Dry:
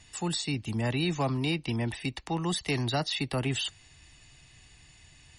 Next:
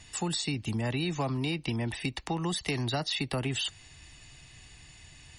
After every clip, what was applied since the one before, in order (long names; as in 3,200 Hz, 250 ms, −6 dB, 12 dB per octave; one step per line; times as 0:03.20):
downward compressor, threshold −31 dBFS, peak gain reduction 7 dB
level +3.5 dB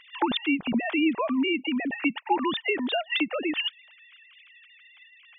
three sine waves on the formant tracks
level +5 dB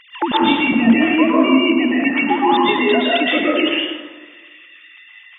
dense smooth reverb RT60 1.4 s, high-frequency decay 0.5×, pre-delay 105 ms, DRR −5.5 dB
level +5 dB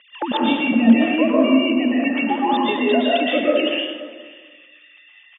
loudspeaker in its box 220–3,300 Hz, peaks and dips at 230 Hz +5 dB, 350 Hz −7 dB, 560 Hz +7 dB, 980 Hz −8 dB, 1,400 Hz −6 dB, 2,100 Hz −9 dB
single-tap delay 532 ms −20.5 dB
level −1 dB